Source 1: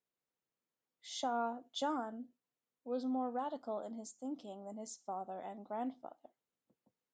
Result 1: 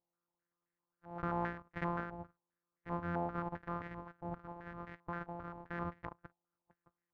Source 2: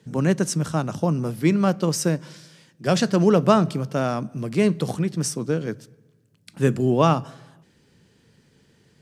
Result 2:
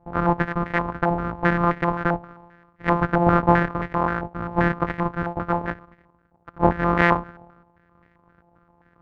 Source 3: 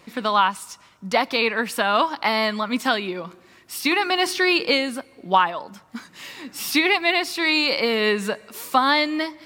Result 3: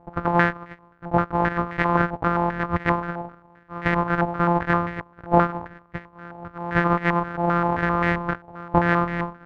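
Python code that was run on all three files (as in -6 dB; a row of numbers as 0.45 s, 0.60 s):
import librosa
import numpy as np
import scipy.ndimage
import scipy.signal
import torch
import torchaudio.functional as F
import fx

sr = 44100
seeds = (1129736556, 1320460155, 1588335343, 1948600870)

y = np.r_[np.sort(x[:len(x) // 256 * 256].reshape(-1, 256), axis=1).ravel(), x[len(x) // 256 * 256:]]
y = fx.hpss(y, sr, part='percussive', gain_db=6)
y = fx.filter_held_lowpass(y, sr, hz=7.6, low_hz=820.0, high_hz=1900.0)
y = F.gain(torch.from_numpy(y), -3.5).numpy()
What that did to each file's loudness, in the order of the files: -1.0 LU, -0.5 LU, -2.0 LU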